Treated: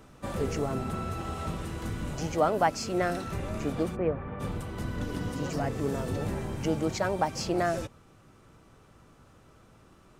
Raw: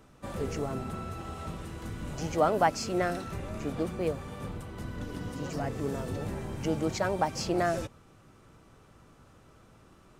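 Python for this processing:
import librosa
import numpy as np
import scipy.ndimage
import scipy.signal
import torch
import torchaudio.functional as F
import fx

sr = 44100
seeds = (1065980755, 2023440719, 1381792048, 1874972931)

p1 = fx.cheby2_lowpass(x, sr, hz=8700.0, order=4, stop_db=70, at=(3.95, 4.39), fade=0.02)
p2 = fx.rider(p1, sr, range_db=5, speed_s=0.5)
p3 = p1 + (p2 * librosa.db_to_amplitude(-0.5))
y = p3 * librosa.db_to_amplitude(-4.0)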